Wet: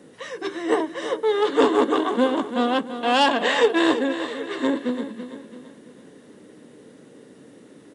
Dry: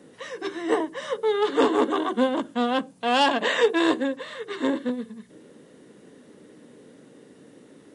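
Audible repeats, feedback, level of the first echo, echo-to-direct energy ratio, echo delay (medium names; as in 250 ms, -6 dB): 4, 44%, -11.0 dB, -10.0 dB, 335 ms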